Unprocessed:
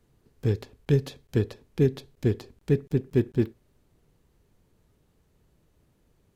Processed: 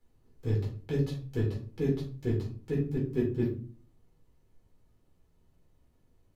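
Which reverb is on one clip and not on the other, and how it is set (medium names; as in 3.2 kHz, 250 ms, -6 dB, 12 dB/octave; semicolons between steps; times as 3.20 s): simulated room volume 250 m³, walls furnished, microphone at 4.1 m; trim -13 dB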